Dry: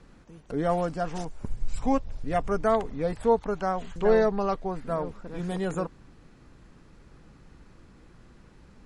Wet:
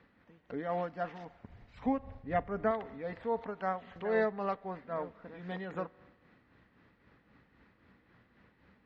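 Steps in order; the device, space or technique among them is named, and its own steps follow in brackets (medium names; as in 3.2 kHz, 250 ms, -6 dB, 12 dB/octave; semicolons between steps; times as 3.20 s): 1.86–2.71 s: tilt EQ -2 dB/octave; combo amplifier with spring reverb and tremolo (spring tank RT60 1.5 s, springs 42 ms, chirp 45 ms, DRR 19 dB; tremolo 3.8 Hz, depth 51%; cabinet simulation 100–3900 Hz, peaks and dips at 150 Hz -8 dB, 360 Hz -5 dB, 1.9 kHz +8 dB); trim -5.5 dB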